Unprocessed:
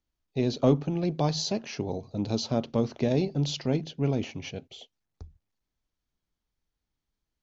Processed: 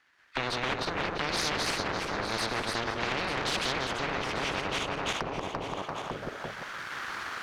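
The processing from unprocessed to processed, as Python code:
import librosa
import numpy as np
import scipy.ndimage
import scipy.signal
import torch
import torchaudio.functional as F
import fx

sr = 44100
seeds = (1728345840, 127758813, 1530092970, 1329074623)

y = fx.reverse_delay_fb(x, sr, ms=171, feedback_pct=49, wet_db=-2.5)
y = fx.recorder_agc(y, sr, target_db=-17.5, rise_db_per_s=11.0, max_gain_db=30)
y = fx.vibrato(y, sr, rate_hz=3.0, depth_cents=13.0)
y = np.abs(y)
y = fx.auto_wah(y, sr, base_hz=430.0, top_hz=1700.0, q=3.1, full_db=-29.5, direction='down')
y = y + 10.0 ** (-12.0 / 20.0) * np.pad(y, (int(892 * sr / 1000.0), 0))[:len(y)]
y = fx.spectral_comp(y, sr, ratio=10.0)
y = F.gain(torch.from_numpy(y), 7.5).numpy()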